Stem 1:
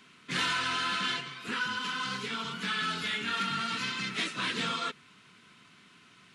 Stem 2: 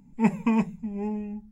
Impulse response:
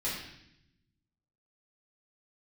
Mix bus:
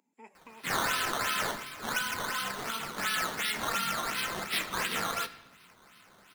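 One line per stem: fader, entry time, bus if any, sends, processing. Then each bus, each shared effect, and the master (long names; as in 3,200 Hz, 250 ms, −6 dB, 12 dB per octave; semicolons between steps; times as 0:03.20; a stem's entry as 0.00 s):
+0.5 dB, 0.35 s, send −15 dB, sample-and-hold swept by an LFO 12×, swing 100% 2.8 Hz
−7.5 dB, 0.00 s, no send, downward compressor 6 to 1, threshold −32 dBFS, peak gain reduction 15.5 dB; high-pass filter 310 Hz 24 dB per octave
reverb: on, RT60 0.75 s, pre-delay 5 ms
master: low-shelf EQ 390 Hz −9.5 dB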